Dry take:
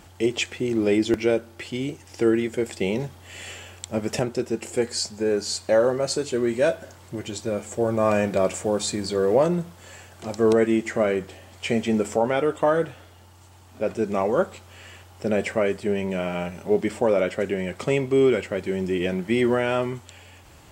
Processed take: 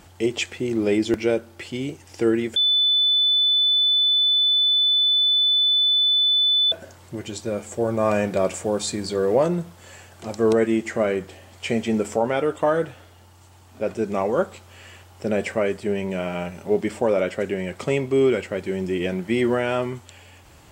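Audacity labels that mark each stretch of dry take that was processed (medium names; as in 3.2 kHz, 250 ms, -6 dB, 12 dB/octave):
2.560000	6.720000	bleep 3.5 kHz -15.5 dBFS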